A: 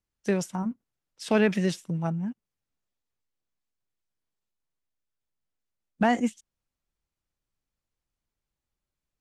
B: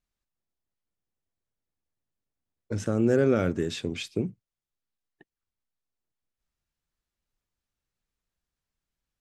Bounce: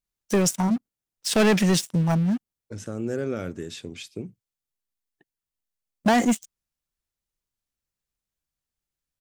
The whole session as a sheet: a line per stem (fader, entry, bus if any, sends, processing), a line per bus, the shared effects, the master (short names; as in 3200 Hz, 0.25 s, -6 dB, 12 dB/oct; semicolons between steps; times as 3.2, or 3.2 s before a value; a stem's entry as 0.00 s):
-2.5 dB, 0.05 s, no send, sample leveller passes 3
-6.5 dB, 0.00 s, no send, dry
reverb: off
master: high shelf 5000 Hz +8.5 dB